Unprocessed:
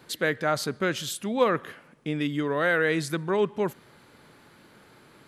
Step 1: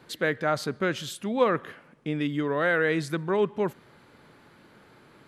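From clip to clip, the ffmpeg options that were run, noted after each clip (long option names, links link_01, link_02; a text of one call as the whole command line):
ffmpeg -i in.wav -af "highshelf=frequency=4800:gain=-8" out.wav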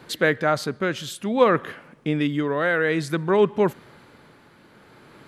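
ffmpeg -i in.wav -af "tremolo=f=0.55:d=0.43,volume=7dB" out.wav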